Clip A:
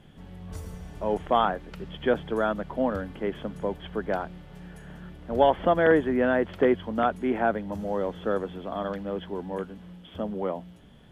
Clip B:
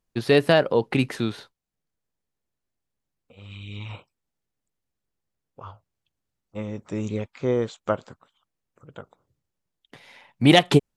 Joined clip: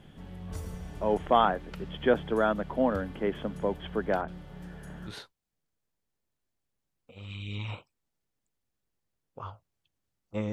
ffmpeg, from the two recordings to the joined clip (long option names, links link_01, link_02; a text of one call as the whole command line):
ffmpeg -i cue0.wav -i cue1.wav -filter_complex "[0:a]asettb=1/sr,asplit=3[link_01][link_02][link_03];[link_01]atrim=end=4.214[link_04];[link_02]atrim=start=4.21:end=5.16,asetpts=PTS-STARTPTS,afade=type=in:duration=0.004:curve=qsin,afade=type=out:start_time=0.946:duration=0.004:curve=qsin,acrossover=split=2700[link_05][link_06];[link_06]adelay=70[link_07];[link_05][link_07]amix=inputs=2:normalize=0,atrim=end_sample=41895[link_08];[link_03]atrim=start=5.156[link_09];[link_04][link_08]acrossfade=duration=0.004:curve1=hsin:curve2=qsin[link_10];[link_10][link_09]acrossfade=duration=0.004:curve1=qsin:curve2=hsin,apad=whole_dur=10.52,atrim=end=10.52,atrim=end=5.16,asetpts=PTS-STARTPTS[link_11];[1:a]atrim=start=1.27:end=6.73,asetpts=PTS-STARTPTS[link_12];[link_11][link_12]acrossfade=duration=0.1:curve1=tri:curve2=tri" out.wav